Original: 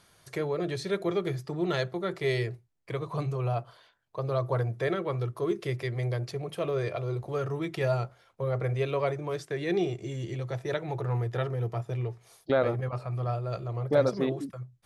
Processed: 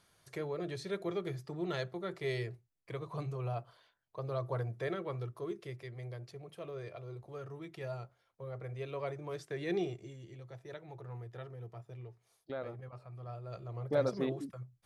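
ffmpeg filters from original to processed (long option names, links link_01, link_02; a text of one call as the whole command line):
ffmpeg -i in.wav -af "volume=10dB,afade=type=out:start_time=5.06:duration=0.74:silence=0.501187,afade=type=in:start_time=8.68:duration=1.07:silence=0.398107,afade=type=out:start_time=9.75:duration=0.43:silence=0.316228,afade=type=in:start_time=13.21:duration=0.95:silence=0.316228" out.wav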